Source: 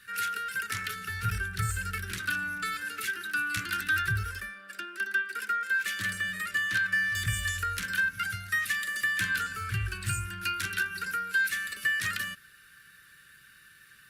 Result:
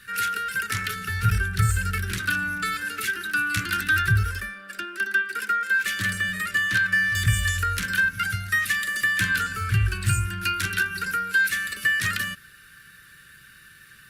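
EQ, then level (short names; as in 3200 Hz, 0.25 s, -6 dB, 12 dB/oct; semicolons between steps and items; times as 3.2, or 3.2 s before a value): low shelf 300 Hz +5.5 dB; +5.5 dB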